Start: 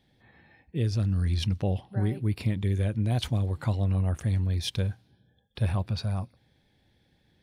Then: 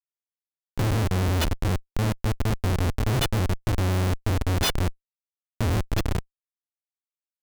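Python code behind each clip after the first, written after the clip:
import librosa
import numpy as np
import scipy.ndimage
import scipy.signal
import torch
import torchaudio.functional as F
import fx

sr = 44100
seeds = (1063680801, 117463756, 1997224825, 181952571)

y = fx.freq_snap(x, sr, grid_st=3)
y = fx.hum_notches(y, sr, base_hz=60, count=3)
y = fx.schmitt(y, sr, flips_db=-23.5)
y = F.gain(torch.from_numpy(y), 7.0).numpy()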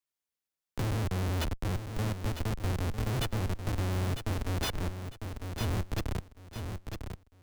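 y = fx.echo_feedback(x, sr, ms=951, feedback_pct=23, wet_db=-10)
y = fx.band_squash(y, sr, depth_pct=40)
y = F.gain(torch.from_numpy(y), -8.0).numpy()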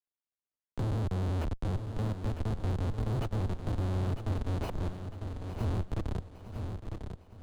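y = scipy.ndimage.median_filter(x, 25, mode='constant')
y = fx.echo_feedback(y, sr, ms=858, feedback_pct=46, wet_db=-13.5)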